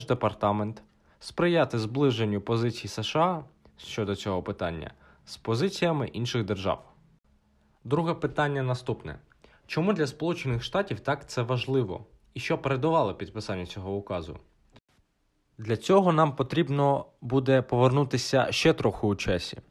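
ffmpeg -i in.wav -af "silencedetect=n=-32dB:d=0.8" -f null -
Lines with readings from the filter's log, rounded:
silence_start: 6.75
silence_end: 7.86 | silence_duration: 1.11
silence_start: 14.33
silence_end: 15.60 | silence_duration: 1.28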